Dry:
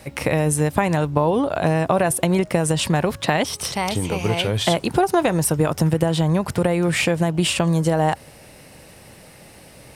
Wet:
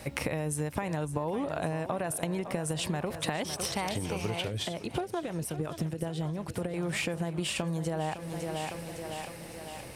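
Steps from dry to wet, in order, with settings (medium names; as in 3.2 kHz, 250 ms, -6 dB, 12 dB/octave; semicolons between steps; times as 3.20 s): thinning echo 557 ms, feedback 56%, high-pass 160 Hz, level -13 dB; compression 6:1, threshold -28 dBFS, peak gain reduction 14.5 dB; 4.48–6.74 s: rotary cabinet horn 5.5 Hz; trim -1.5 dB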